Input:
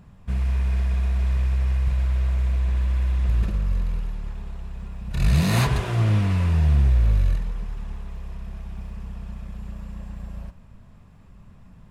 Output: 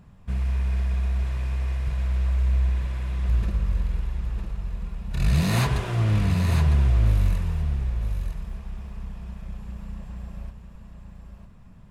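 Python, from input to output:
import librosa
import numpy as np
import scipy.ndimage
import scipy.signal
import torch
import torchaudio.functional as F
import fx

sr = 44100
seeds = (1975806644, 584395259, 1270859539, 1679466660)

p1 = fx.high_shelf(x, sr, hz=7300.0, db=11.5, at=(7.06, 7.62))
p2 = p1 + fx.echo_single(p1, sr, ms=954, db=-7.0, dry=0)
y = p2 * librosa.db_to_amplitude(-2.0)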